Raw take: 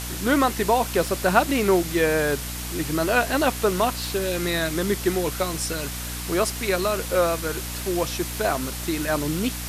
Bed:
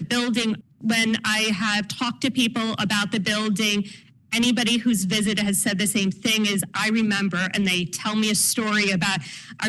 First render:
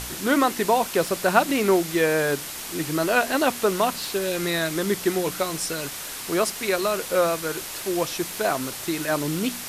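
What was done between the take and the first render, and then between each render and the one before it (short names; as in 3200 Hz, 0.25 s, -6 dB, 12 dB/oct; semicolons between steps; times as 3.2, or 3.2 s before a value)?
de-hum 60 Hz, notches 5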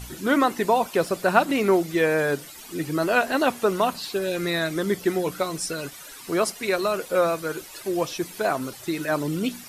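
denoiser 13 dB, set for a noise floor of -35 dBFS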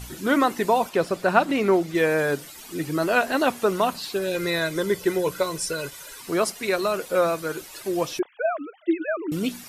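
0.89–1.95 high shelf 7300 Hz -9.5 dB; 4.34–6.22 comb 2 ms, depth 51%; 8.19–9.32 sine-wave speech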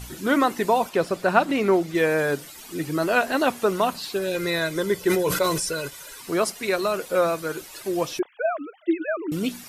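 5–5.88 sustainer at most 43 dB/s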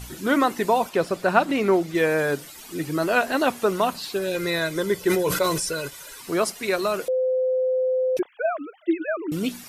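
7.08–8.17 bleep 514 Hz -19 dBFS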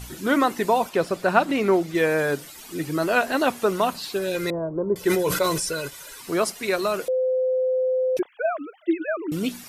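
4.5–4.96 steep low-pass 1000 Hz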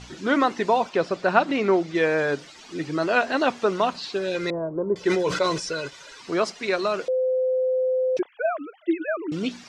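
LPF 6100 Hz 24 dB/oct; low shelf 96 Hz -10 dB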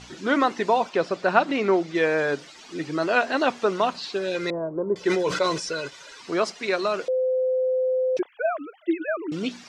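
low shelf 110 Hz -7.5 dB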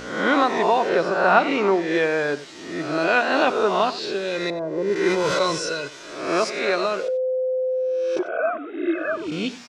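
spectral swells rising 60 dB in 0.79 s; echo 92 ms -16 dB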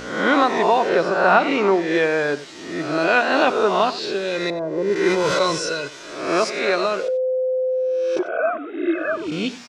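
gain +2 dB; limiter -2 dBFS, peak gain reduction 2.5 dB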